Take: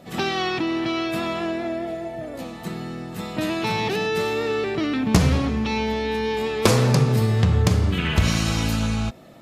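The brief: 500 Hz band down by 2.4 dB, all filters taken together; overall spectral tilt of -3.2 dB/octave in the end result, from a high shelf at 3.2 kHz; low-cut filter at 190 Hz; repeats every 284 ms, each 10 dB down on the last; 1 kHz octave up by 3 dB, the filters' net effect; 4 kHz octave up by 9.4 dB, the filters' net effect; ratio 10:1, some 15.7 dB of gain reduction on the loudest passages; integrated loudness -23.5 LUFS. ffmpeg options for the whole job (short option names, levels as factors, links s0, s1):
-af "highpass=190,equalizer=f=500:t=o:g=-4,equalizer=f=1000:t=o:g=4,highshelf=f=3200:g=7,equalizer=f=4000:t=o:g=6.5,acompressor=threshold=0.0398:ratio=10,aecho=1:1:284|568|852|1136:0.316|0.101|0.0324|0.0104,volume=2.37"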